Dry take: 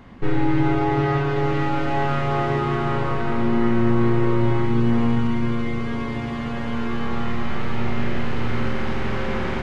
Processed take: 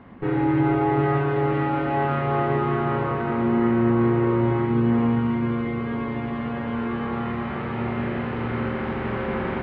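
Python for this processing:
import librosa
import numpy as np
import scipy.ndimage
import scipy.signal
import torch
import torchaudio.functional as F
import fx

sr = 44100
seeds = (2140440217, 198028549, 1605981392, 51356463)

y = fx.highpass(x, sr, hz=150.0, slope=6)
y = fx.air_absorb(y, sr, metres=460.0)
y = y * librosa.db_to_amplitude(2.0)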